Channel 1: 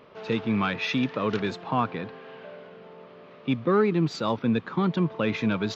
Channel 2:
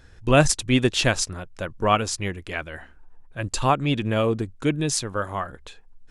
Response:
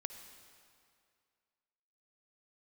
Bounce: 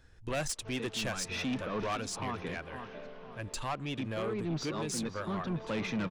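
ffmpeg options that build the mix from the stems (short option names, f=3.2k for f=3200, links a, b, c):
-filter_complex "[0:a]equalizer=f=5.8k:w=3.3:g=8.5,adelay=500,volume=-4dB,asplit=2[a][b];[b]volume=-16.5dB[c];[1:a]acrossover=split=410[d][e];[d]acompressor=threshold=-29dB:ratio=2[f];[f][e]amix=inputs=2:normalize=0,volume=-9.5dB,asplit=2[g][h];[h]apad=whole_len=275824[i];[a][i]sidechaincompress=threshold=-39dB:ratio=6:attack=12:release=240[j];[c]aecho=0:1:507|1014|1521|2028|2535:1|0.37|0.137|0.0507|0.0187[k];[j][g][k]amix=inputs=3:normalize=0,asoftclip=type=tanh:threshold=-28.5dB"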